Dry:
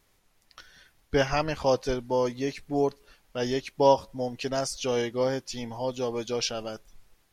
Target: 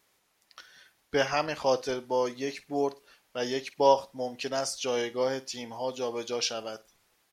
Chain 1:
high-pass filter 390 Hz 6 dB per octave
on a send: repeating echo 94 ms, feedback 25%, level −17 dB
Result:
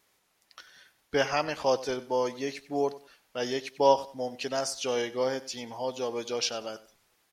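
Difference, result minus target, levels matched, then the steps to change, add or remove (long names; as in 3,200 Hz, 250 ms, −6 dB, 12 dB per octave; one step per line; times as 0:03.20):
echo 41 ms late
change: repeating echo 53 ms, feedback 25%, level −17 dB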